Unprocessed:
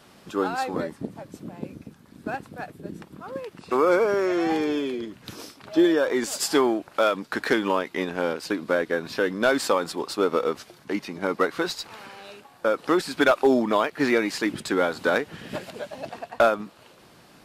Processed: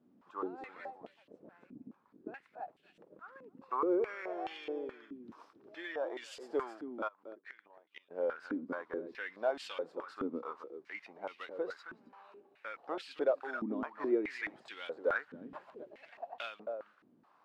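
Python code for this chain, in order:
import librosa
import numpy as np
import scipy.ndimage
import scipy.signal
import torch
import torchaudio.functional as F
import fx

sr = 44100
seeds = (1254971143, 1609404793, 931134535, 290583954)

p1 = fx.gate_flip(x, sr, shuts_db=-16.0, range_db=-25, at=(7.07, 8.1), fade=0.02)
p2 = p1 + fx.echo_single(p1, sr, ms=269, db=-11.5, dry=0)
p3 = fx.filter_held_bandpass(p2, sr, hz=4.7, low_hz=260.0, high_hz=2900.0)
y = p3 * 10.0 ** (-5.0 / 20.0)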